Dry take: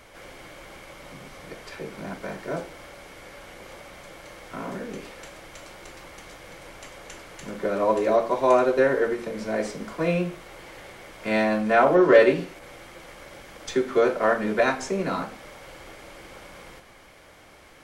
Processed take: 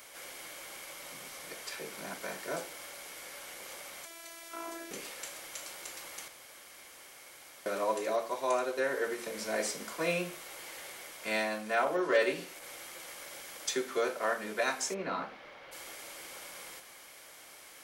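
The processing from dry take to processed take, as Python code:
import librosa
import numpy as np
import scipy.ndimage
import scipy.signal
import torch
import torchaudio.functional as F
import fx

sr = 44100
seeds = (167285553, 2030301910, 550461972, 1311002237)

y = fx.robotise(x, sr, hz=334.0, at=(4.05, 4.91))
y = fx.air_absorb(y, sr, metres=300.0, at=(14.93, 15.71), fade=0.02)
y = fx.edit(y, sr, fx.room_tone_fill(start_s=6.28, length_s=1.38), tone=tone)
y = fx.riaa(y, sr, side='recording')
y = fx.rider(y, sr, range_db=3, speed_s=0.5)
y = y * 10.0 ** (-7.5 / 20.0)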